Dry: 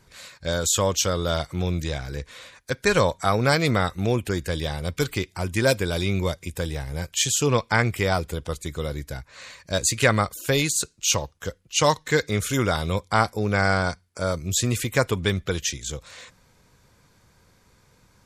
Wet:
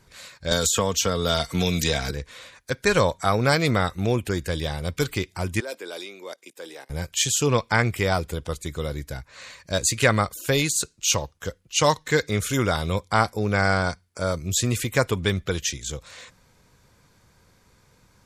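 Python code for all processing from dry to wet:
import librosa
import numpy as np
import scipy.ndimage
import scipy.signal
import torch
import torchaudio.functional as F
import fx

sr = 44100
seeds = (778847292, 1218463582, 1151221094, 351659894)

y = fx.chain(x, sr, fx.comb(ms=4.4, depth=0.47),
    fx.band_squash(depth_pct=100), at=(0.51, 2.11))
y = fx.chain(y, sr, fx.level_steps(step_db=16),
    fx.highpass(hz=310.0, slope=24),
    fx.band_widen(depth_pct=70), at=(5.6, 6.9))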